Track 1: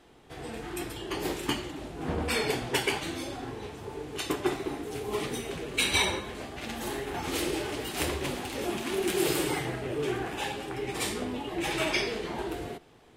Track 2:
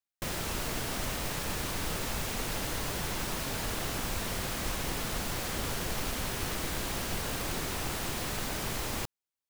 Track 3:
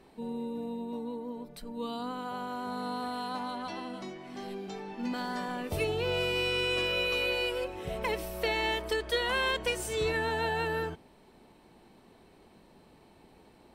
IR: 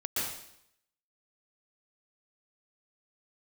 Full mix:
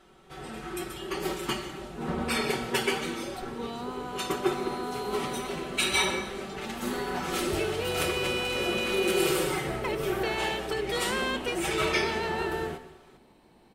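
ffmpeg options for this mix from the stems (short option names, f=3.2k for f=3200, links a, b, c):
-filter_complex "[0:a]equalizer=f=1.3k:w=7:g=9,aecho=1:1:5.3:0.69,volume=-3dB,asplit=2[a][b];[b]volume=-17.5dB[c];[2:a]asoftclip=type=tanh:threshold=-21.5dB,adelay=1800,volume=-1.5dB,asplit=2[d][e];[e]volume=-20.5dB[f];[3:a]atrim=start_sample=2205[g];[c][f]amix=inputs=2:normalize=0[h];[h][g]afir=irnorm=-1:irlink=0[i];[a][d][i]amix=inputs=3:normalize=0"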